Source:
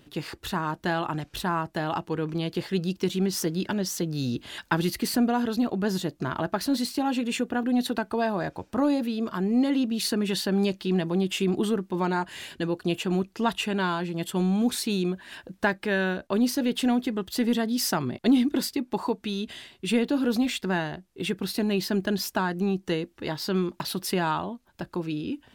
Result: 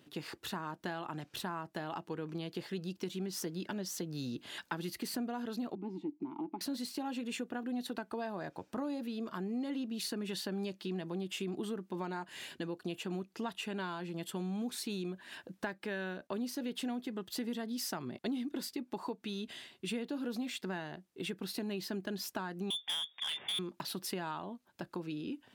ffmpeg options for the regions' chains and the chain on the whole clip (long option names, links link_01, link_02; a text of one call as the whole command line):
ffmpeg -i in.wav -filter_complex "[0:a]asettb=1/sr,asplit=3[link_01][link_02][link_03];[link_01]atrim=end=5.754[link_04];[link_02]atrim=start=5.75:end=6.61,asetpts=PTS-STARTPTS,afade=type=in:duration=0.004:curve=qsin,afade=type=out:start_time=0.856:duration=0.004:curve=qsin,asplit=3[link_05][link_06][link_07];[link_05]bandpass=frequency=300:width_type=q:width=8,volume=0dB[link_08];[link_06]bandpass=frequency=870:width_type=q:width=8,volume=-6dB[link_09];[link_07]bandpass=frequency=2240:width_type=q:width=8,volume=-9dB[link_10];[link_08][link_09][link_10]amix=inputs=3:normalize=0,equalizer=frequency=280:width=0.36:gain=10[link_11];[link_03]atrim=start=6.606[link_12];[link_04][link_11]acrossfade=duration=0.004:curve1=hsin:curve2=qsin[link_13];[link_13][link_12]acrossfade=duration=0.004:curve1=qsin:curve2=hsin,asettb=1/sr,asplit=3[link_14][link_15][link_16];[link_14]atrim=end=22.704[link_17];[link_15]atrim=start=22.7:end=23.59,asetpts=PTS-STARTPTS,afade=type=in:duration=0.004:curve=qsin,afade=type=out:start_time=0.886:duration=0.004:curve=qsin,lowpass=frequency=3100:width_type=q:width=0.5098,lowpass=frequency=3100:width_type=q:width=0.6013,lowpass=frequency=3100:width_type=q:width=0.9,lowpass=frequency=3100:width_type=q:width=2.563,afreqshift=-3700,aeval=exprs='0.178*sin(PI/2*1.78*val(0)/0.178)':channel_layout=same,aeval=exprs='(tanh(8.91*val(0)+0.1)-tanh(0.1))/8.91':channel_layout=same[link_18];[link_16]atrim=start=23.586[link_19];[link_17][link_18]acrossfade=duration=0.004:curve1=hsin:curve2=qsin[link_20];[link_20][link_19]acrossfade=duration=0.004:curve1=qsin:curve2=hsin,highpass=140,acompressor=threshold=-31dB:ratio=3,volume=-6dB" out.wav